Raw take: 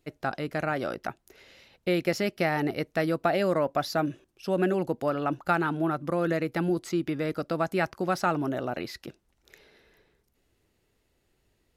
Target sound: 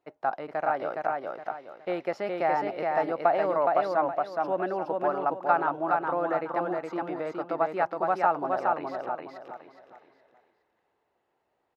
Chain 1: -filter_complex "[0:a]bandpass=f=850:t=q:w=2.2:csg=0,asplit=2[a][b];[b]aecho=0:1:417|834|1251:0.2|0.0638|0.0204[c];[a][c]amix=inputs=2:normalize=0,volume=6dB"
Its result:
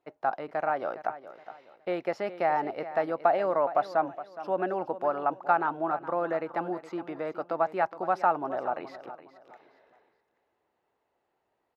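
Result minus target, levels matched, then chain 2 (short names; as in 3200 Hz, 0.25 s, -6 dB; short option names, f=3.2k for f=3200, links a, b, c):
echo-to-direct -11 dB
-filter_complex "[0:a]bandpass=f=850:t=q:w=2.2:csg=0,asplit=2[a][b];[b]aecho=0:1:417|834|1251|1668:0.708|0.227|0.0725|0.0232[c];[a][c]amix=inputs=2:normalize=0,volume=6dB"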